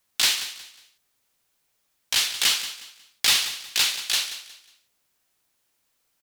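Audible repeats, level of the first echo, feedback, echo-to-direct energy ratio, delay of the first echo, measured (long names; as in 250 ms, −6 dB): 3, −13.0 dB, 30%, −12.5 dB, 181 ms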